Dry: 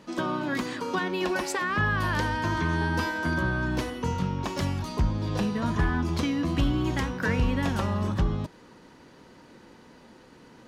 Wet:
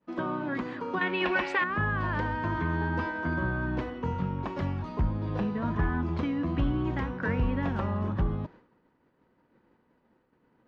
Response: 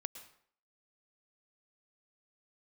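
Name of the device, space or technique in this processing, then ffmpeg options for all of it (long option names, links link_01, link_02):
hearing-loss simulation: -filter_complex "[0:a]asettb=1/sr,asplit=3[link_01][link_02][link_03];[link_01]atrim=end=1.014[link_04];[link_02]atrim=start=1.01:end=1.64,asetpts=PTS-STARTPTS,afade=type=in:duration=0.004:curve=qsin,afade=type=out:start_time=0.626:duration=0.004:curve=qsin,equalizer=frequency=2600:width=0.76:gain=13.5[link_05];[link_03]atrim=start=1.636[link_06];[link_04][link_05]acrossfade=duration=0.004:curve1=hsin:curve2=qsin[link_07];[link_07][link_06]acrossfade=duration=0.004:curve1=qsin:curve2=hsin,lowpass=2000,agate=range=-33dB:threshold=-42dB:ratio=3:detection=peak,volume=-2.5dB"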